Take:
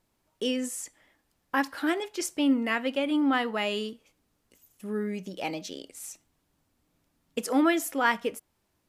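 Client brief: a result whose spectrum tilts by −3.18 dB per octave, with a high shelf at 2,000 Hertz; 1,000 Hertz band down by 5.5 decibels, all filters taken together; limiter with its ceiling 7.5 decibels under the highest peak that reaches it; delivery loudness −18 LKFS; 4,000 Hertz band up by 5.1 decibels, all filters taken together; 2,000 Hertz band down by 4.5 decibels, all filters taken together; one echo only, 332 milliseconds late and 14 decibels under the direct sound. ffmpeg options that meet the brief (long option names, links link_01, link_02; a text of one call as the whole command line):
ffmpeg -i in.wav -af "equalizer=frequency=1000:width_type=o:gain=-7,highshelf=frequency=2000:gain=6.5,equalizer=frequency=2000:width_type=o:gain=-8.5,equalizer=frequency=4000:width_type=o:gain=5.5,alimiter=limit=-20dB:level=0:latency=1,aecho=1:1:332:0.2,volume=13dB" out.wav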